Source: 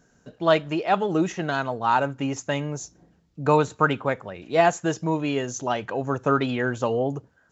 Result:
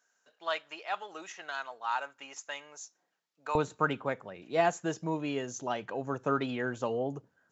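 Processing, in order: HPF 1000 Hz 12 dB/oct, from 3.55 s 130 Hz; gain -8 dB

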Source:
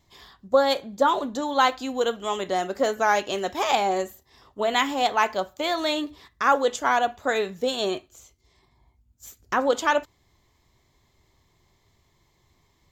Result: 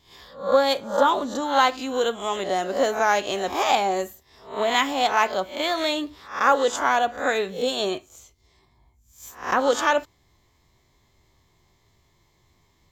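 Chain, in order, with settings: spectral swells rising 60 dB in 0.40 s

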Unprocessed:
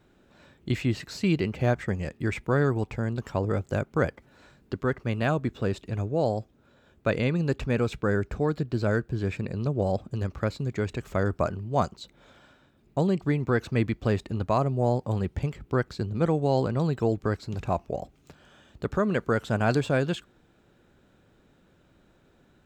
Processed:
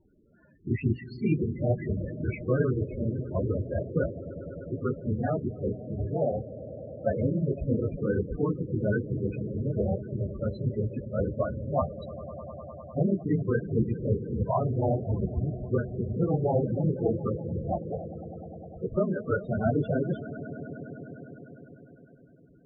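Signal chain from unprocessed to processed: phase scrambler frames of 50 ms; swelling echo 0.101 s, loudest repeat 5, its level -17.5 dB; dynamic EQ 5400 Hz, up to -7 dB, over -57 dBFS, Q 1.5; loudest bins only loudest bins 16; gain -1.5 dB

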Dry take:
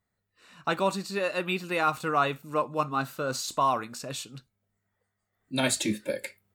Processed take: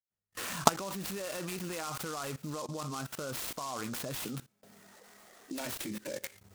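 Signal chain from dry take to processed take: recorder AGC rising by 77 dB/s; 4.2–5.65 HPF 130 Hz -> 290 Hz 24 dB/oct; gate with hold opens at -43 dBFS; level quantiser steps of 19 dB; wow and flutter 19 cents; noise-modulated delay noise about 5500 Hz, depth 0.07 ms

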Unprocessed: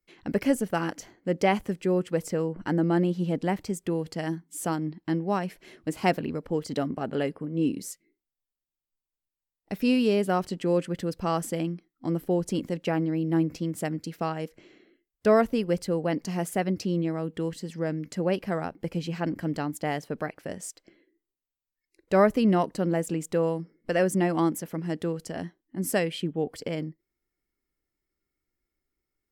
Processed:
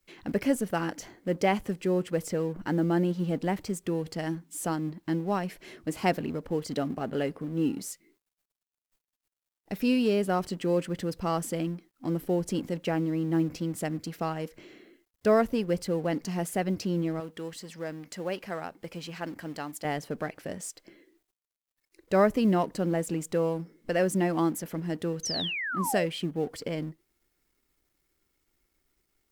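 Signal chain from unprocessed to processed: G.711 law mismatch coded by mu; 17.2–19.85 low shelf 410 Hz -11 dB; 25.23–26.06 painted sound fall 520–6400 Hz -30 dBFS; gain -2.5 dB

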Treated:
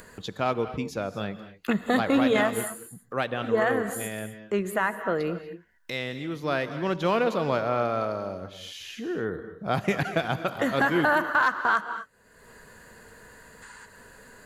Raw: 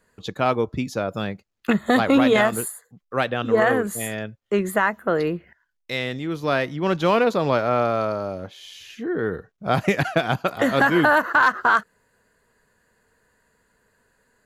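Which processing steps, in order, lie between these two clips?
spectral gain 13.63–13.86, 790–9500 Hz +11 dB; upward compressor, threshold -27 dBFS; non-linear reverb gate 0.27 s rising, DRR 11 dB; gain -5.5 dB

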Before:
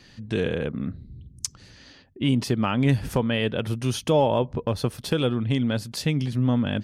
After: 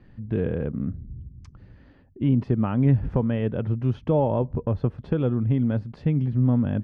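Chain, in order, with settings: LPF 1800 Hz 12 dB/oct; tilt -2.5 dB/oct; gain -4.5 dB

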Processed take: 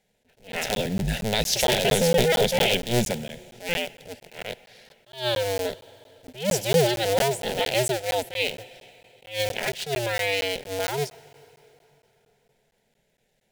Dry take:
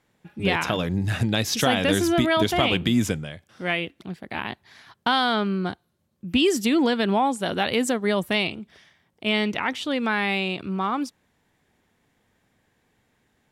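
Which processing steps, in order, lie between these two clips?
cycle switcher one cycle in 2, inverted; in parallel at -8.5 dB: bit-crush 5-bit; on the sum: fixed phaser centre 310 Hz, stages 6; on a send at -20 dB: reverb RT60 3.6 s, pre-delay 63 ms; on the sum: crackling interface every 0.23 s, samples 512, zero, from 0.52; attack slew limiter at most 170 dB/s

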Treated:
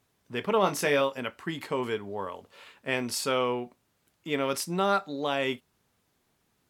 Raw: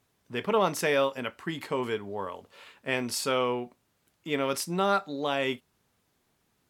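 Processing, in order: 0.61–1.01 doubler 21 ms -7 dB

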